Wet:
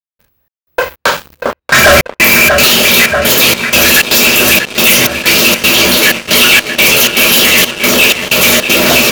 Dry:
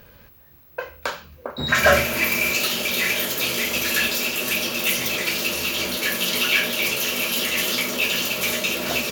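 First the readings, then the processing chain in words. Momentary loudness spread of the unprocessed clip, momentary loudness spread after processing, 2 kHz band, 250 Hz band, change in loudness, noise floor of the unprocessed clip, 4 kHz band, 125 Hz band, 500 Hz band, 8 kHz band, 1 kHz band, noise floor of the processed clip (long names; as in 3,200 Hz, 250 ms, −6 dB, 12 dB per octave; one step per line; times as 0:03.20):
12 LU, 9 LU, +14.0 dB, +15.0 dB, +14.5 dB, −50 dBFS, +14.5 dB, +13.5 dB, +14.0 dB, +15.5 dB, +14.5 dB, −79 dBFS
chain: gate pattern "..xxx..xxx.xxxxx" 157 BPM −60 dB
feedback echo with a low-pass in the loop 637 ms, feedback 73%, low-pass 3,800 Hz, level −12 dB
leveller curve on the samples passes 5
level +1 dB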